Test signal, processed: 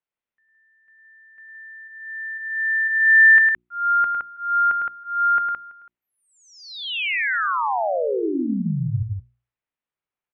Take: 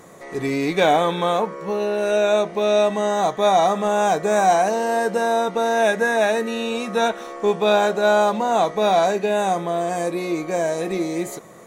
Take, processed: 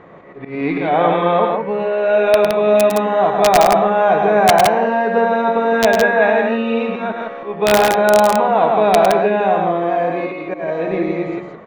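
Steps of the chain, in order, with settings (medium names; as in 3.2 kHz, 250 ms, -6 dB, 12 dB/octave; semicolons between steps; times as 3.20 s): low-pass 2.8 kHz 24 dB/octave; hum notches 60/120/180/240/300/360 Hz; slow attack 211 ms; integer overflow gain 8.5 dB; loudspeakers at several distances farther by 36 m -6 dB, 57 m -4 dB; trim +3.5 dB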